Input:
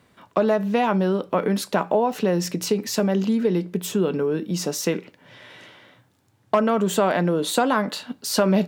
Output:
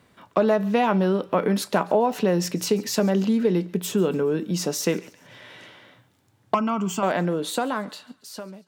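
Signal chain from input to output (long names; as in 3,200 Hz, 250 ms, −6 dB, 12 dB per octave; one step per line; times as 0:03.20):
fade-out on the ending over 1.96 s
0:06.54–0:07.03: phaser with its sweep stopped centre 2,600 Hz, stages 8
on a send: feedback echo with a high-pass in the loop 140 ms, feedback 50%, high-pass 1,100 Hz, level −21 dB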